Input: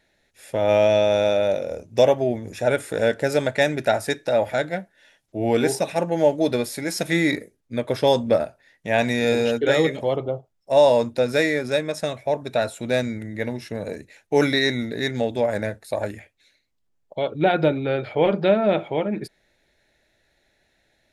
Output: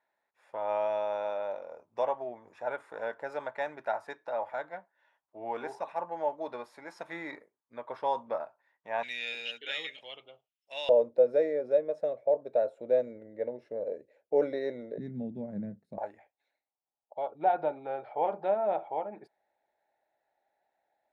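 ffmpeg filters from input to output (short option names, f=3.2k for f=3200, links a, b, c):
-af "asetnsamples=n=441:p=0,asendcmd='9.03 bandpass f 2900;10.89 bandpass f 530;14.98 bandpass f 190;15.98 bandpass f 810',bandpass=f=1k:t=q:w=4.6:csg=0"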